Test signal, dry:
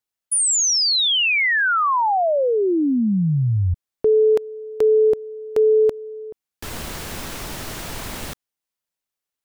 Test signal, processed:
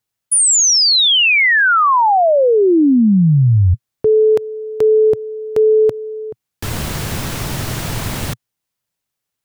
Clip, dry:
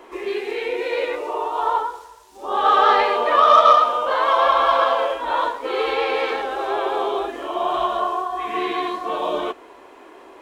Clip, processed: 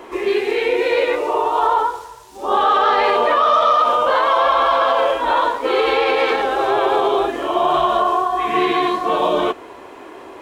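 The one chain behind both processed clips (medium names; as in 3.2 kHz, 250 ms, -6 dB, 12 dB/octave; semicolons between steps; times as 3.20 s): peaking EQ 120 Hz +11 dB 1.1 oct; peak limiter -14 dBFS; trim +6.5 dB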